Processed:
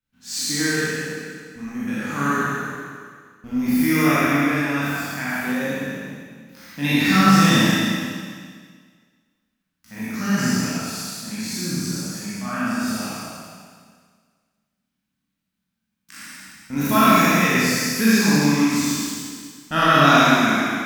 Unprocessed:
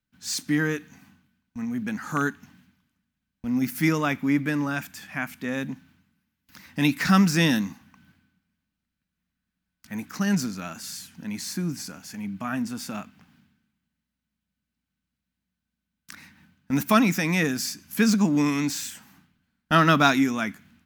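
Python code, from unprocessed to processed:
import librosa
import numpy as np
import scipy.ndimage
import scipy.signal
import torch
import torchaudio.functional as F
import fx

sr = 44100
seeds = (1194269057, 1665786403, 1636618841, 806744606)

y = fx.spec_trails(x, sr, decay_s=1.55)
y = fx.rev_schroeder(y, sr, rt60_s=1.6, comb_ms=28, drr_db=-8.0)
y = F.gain(torch.from_numpy(y), -6.5).numpy()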